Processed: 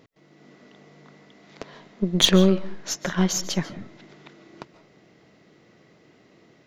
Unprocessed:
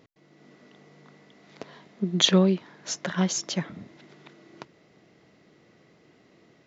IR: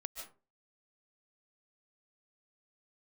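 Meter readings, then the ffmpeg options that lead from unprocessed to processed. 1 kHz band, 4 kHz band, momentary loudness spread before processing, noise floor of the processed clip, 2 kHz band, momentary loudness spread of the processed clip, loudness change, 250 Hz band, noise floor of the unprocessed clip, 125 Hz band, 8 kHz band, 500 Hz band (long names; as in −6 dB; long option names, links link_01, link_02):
+2.0 dB, +3.0 dB, 14 LU, −57 dBFS, +3.0 dB, 14 LU, +3.0 dB, +3.0 dB, −60 dBFS, +3.0 dB, can't be measured, +3.5 dB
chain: -filter_complex "[0:a]aeval=exprs='0.531*(cos(1*acos(clip(val(0)/0.531,-1,1)))-cos(1*PI/2))+0.0335*(cos(8*acos(clip(val(0)/0.531,-1,1)))-cos(8*PI/2))':channel_layout=same,asplit=2[link_01][link_02];[1:a]atrim=start_sample=2205[link_03];[link_02][link_03]afir=irnorm=-1:irlink=0,volume=-5dB[link_04];[link_01][link_04]amix=inputs=2:normalize=0"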